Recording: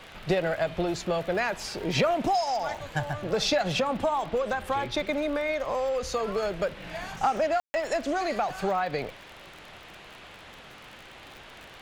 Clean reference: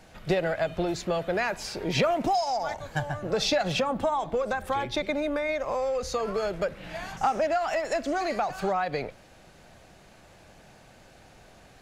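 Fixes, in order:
click removal
ambience match 0:07.60–0:07.74
noise reduction from a noise print 6 dB

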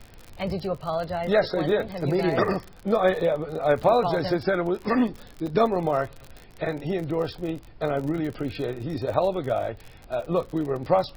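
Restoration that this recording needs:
click removal
repair the gap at 0:03.20/0:05.47/0:06.26/0:10.26, 3 ms
noise reduction from a noise print 24 dB

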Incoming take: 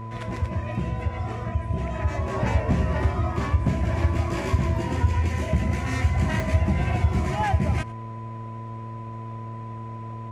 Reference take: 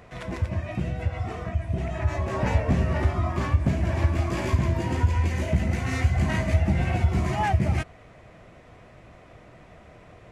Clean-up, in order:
hum removal 112.9 Hz, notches 6
notch filter 1,000 Hz, Q 30
repair the gap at 0:06.40, 1.1 ms
echo removal 94 ms −20.5 dB

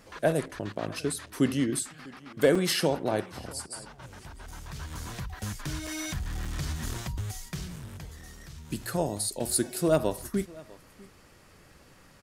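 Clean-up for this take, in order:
clipped peaks rebuilt −11.5 dBFS
repair the gap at 0:02.55/0:04.51/0:05.87/0:06.45/0:07.76, 4.2 ms
echo removal 649 ms −22.5 dB

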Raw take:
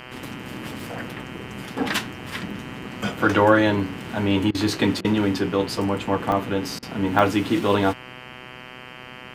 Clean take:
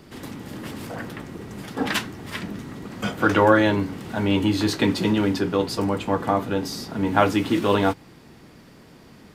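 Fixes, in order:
hum removal 126.1 Hz, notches 25
repair the gap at 0:00.80/0:06.32/0:07.19, 1.1 ms
repair the gap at 0:04.51/0:05.01/0:06.79, 35 ms

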